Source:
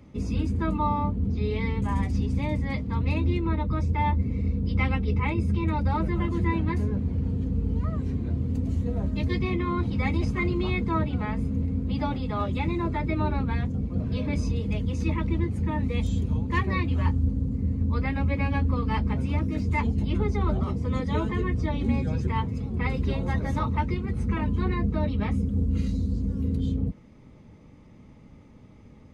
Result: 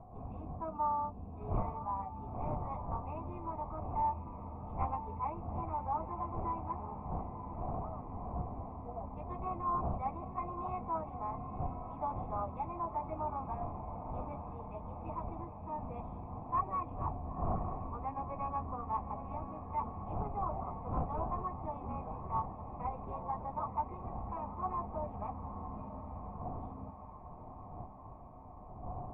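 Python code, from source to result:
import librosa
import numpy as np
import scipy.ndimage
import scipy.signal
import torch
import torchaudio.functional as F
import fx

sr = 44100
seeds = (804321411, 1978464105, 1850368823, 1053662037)

y = fx.dmg_wind(x, sr, seeds[0], corner_hz=120.0, level_db=-24.0)
y = fx.formant_cascade(y, sr, vowel='a')
y = fx.echo_diffused(y, sr, ms=945, feedback_pct=69, wet_db=-11.0)
y = fx.doppler_dist(y, sr, depth_ms=0.27)
y = F.gain(torch.from_numpy(y), 6.0).numpy()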